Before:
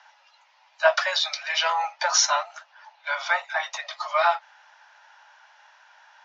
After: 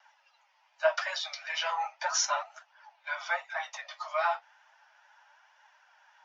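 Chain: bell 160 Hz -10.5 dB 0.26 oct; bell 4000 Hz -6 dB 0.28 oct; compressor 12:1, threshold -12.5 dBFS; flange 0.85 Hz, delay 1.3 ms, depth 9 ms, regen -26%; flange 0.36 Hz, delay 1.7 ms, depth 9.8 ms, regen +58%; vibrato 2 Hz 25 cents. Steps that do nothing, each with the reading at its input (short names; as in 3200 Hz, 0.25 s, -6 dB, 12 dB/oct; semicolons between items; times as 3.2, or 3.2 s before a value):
bell 160 Hz: input band starts at 480 Hz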